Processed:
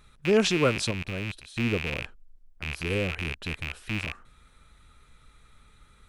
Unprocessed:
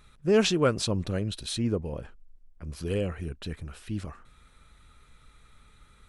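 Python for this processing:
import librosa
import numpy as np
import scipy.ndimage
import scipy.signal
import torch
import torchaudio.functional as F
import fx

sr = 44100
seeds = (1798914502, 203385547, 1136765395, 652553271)

y = fx.rattle_buzz(x, sr, strikes_db=-42.0, level_db=-19.0)
y = fx.level_steps(y, sr, step_db=16, at=(0.9, 1.56), fade=0.02)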